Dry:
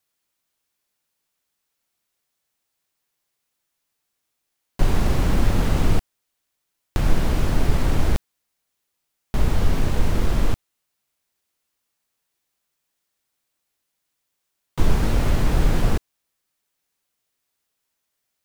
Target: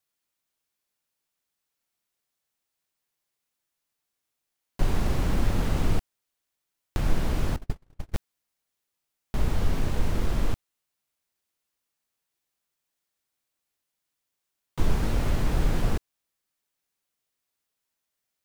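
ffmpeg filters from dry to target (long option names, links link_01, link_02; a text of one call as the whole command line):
ffmpeg -i in.wav -filter_complex "[0:a]asettb=1/sr,asplit=3[link_01][link_02][link_03];[link_01]atrim=end=7.564[link_04];[link_02]atrim=start=7.56:end=8.14,asetpts=PTS-STARTPTS,afade=type=in:duration=0.004:curve=qsin,afade=type=out:start_time=0.576:duration=0.004:curve=qsin,agate=range=-47dB:threshold=-11dB:ratio=16:detection=peak[link_05];[link_03]atrim=start=8.136[link_06];[link_04][link_05]acrossfade=duration=0.004:curve1=hsin:curve2=qsin[link_07];[link_07][link_06]acrossfade=duration=0.004:curve1=qsin:curve2=hsin,volume=-5.5dB" out.wav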